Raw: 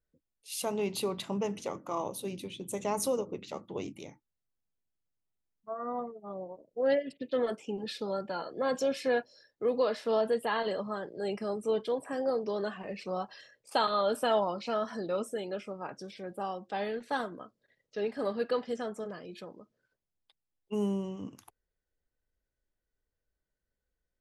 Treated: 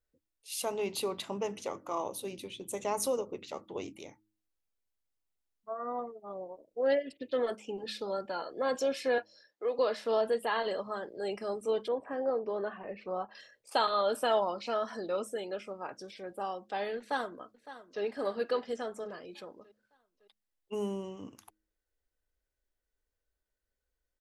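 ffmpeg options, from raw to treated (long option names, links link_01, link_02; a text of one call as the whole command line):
ffmpeg -i in.wav -filter_complex "[0:a]asettb=1/sr,asplit=3[link_01][link_02][link_03];[link_01]atrim=end=9.184[link_04];[link_02]atrim=start=9.18:end=9.79,asetpts=PTS-STARTPTS,afade=type=in:duration=0.004:curve=qsin,afade=type=out:start_time=0.606:duration=0.004:curve=qsin,highpass=420,lowpass=7100[link_05];[link_03]atrim=start=9.786[link_06];[link_04][link_05]acrossfade=duration=0.004:curve1=hsin:curve2=qsin[link_07];[link_07][link_06]acrossfade=duration=0.004:curve1=qsin:curve2=hsin,asettb=1/sr,asplit=3[link_08][link_09][link_10];[link_08]atrim=end=11.884[link_11];[link_09]atrim=start=11.88:end=13.35,asetpts=PTS-STARTPTS,afade=type=in:duration=0.004:curve=qsin,afade=type=out:start_time=1.466:duration=0.004:curve=qsin,lowpass=1900[link_12];[link_10]atrim=start=13.346[link_13];[link_11][link_12]acrossfade=duration=0.004:curve1=hsin:curve2=qsin[link_14];[link_14][link_13]acrossfade=duration=0.004:curve1=qsin:curve2=hsin,asplit=2[link_15][link_16];[link_16]afade=type=in:start_time=16.98:duration=0.01,afade=type=out:start_time=18.03:duration=0.01,aecho=0:1:560|1120|1680|2240|2800:0.188365|0.0941825|0.0470912|0.0235456|0.0117728[link_17];[link_15][link_17]amix=inputs=2:normalize=0,equalizer=frequency=160:width_type=o:width=1.1:gain=-9,bandreject=frequency=106:width_type=h:width=4,bandreject=frequency=212:width_type=h:width=4,bandreject=frequency=318:width_type=h:width=4" out.wav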